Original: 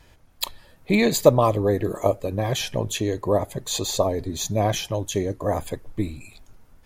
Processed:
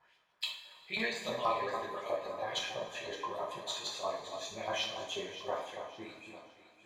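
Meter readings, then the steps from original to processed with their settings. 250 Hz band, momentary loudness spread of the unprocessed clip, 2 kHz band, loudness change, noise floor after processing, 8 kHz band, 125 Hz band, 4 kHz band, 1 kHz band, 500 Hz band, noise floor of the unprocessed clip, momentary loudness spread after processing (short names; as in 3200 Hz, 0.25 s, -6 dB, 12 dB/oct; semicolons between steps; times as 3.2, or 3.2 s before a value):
-22.5 dB, 14 LU, -6.5 dB, -14.0 dB, -67 dBFS, -17.0 dB, -29.5 dB, -7.5 dB, -9.0 dB, -16.0 dB, -54 dBFS, 12 LU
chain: LFO band-pass saw up 6.2 Hz 840–4500 Hz; echo with dull and thin repeats by turns 0.283 s, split 1500 Hz, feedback 57%, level -7.5 dB; two-slope reverb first 0.49 s, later 2.8 s, from -18 dB, DRR -4 dB; gain -6.5 dB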